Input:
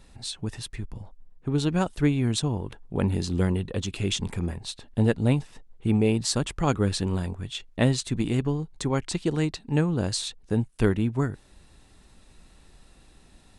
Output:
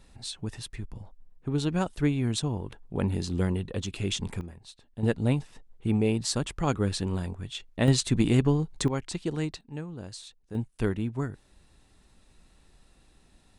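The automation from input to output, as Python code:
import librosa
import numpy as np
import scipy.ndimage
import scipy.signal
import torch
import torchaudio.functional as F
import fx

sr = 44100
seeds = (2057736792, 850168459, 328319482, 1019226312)

y = fx.gain(x, sr, db=fx.steps((0.0, -3.0), (4.41, -13.0), (5.03, -3.0), (7.88, 3.0), (8.88, -5.0), (9.61, -14.0), (10.55, -5.5)))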